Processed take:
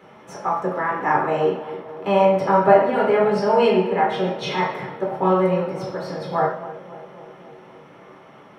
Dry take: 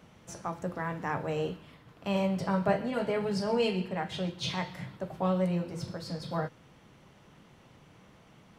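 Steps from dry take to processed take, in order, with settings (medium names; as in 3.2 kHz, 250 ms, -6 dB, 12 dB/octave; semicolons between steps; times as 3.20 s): peaking EQ 120 Hz -4 dB 1.4 oct; tape echo 268 ms, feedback 79%, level -12 dB, low-pass 1 kHz; reverberation RT60 0.60 s, pre-delay 3 ms, DRR -3 dB; trim -1 dB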